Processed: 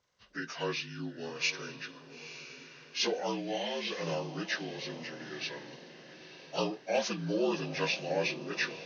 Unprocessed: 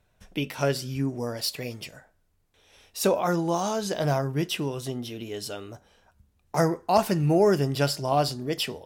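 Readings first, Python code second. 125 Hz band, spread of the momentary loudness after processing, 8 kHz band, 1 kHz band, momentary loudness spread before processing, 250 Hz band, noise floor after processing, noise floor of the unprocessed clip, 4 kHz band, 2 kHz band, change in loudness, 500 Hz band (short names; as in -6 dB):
-15.0 dB, 16 LU, -7.5 dB, -11.5 dB, 14 LU, -9.5 dB, -55 dBFS, -68 dBFS, -3.0 dB, +1.0 dB, -8.0 dB, -9.0 dB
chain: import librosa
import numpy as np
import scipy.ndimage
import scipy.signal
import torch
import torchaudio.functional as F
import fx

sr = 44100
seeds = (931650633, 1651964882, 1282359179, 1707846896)

y = fx.partial_stretch(x, sr, pct=78)
y = fx.tilt_eq(y, sr, slope=3.0)
y = fx.echo_diffused(y, sr, ms=922, feedback_pct=44, wet_db=-12.0)
y = y * 10.0 ** (-5.0 / 20.0)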